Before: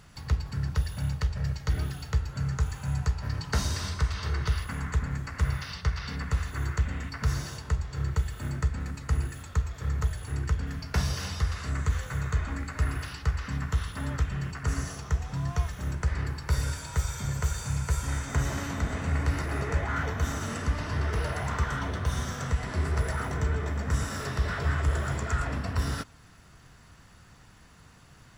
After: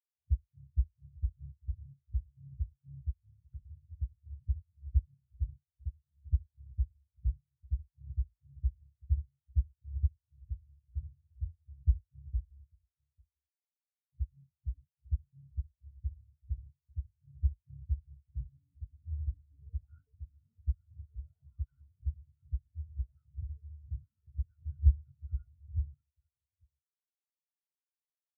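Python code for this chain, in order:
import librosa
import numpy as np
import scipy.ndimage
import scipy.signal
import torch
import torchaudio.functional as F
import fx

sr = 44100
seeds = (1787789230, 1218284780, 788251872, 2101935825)

p1 = fx.pre_emphasis(x, sr, coefficient=0.97, at=(12.65, 14.13))
p2 = p1 + fx.echo_multitap(p1, sr, ms=(479, 847), db=(-13.5, -7.5), dry=0)
y = fx.spectral_expand(p2, sr, expansion=4.0)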